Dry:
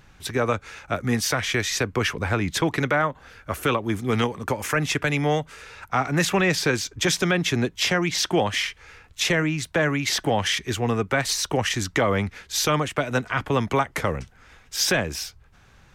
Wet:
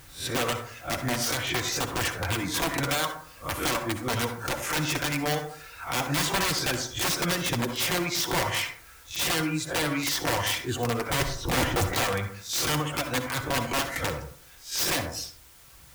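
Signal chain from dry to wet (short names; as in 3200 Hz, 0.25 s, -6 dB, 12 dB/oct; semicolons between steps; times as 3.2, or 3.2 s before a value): spectral swells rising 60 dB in 0.32 s; reverb removal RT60 1.3 s; 11.1–11.93 tilt -4.5 dB/oct; in parallel at -1.5 dB: compressor 16:1, threshold -33 dBFS, peak gain reduction 23.5 dB; on the sum: requantised 8-bit, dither triangular; wrapped overs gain 14 dB; notch comb 210 Hz; reverb RT60 0.55 s, pre-delay 53 ms, DRR 6.5 dB; gain -4.5 dB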